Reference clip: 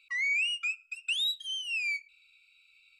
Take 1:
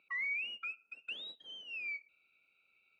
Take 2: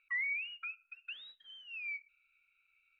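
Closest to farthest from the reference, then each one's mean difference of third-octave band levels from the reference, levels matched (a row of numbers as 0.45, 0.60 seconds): 2, 1; 4.0, 6.0 decibels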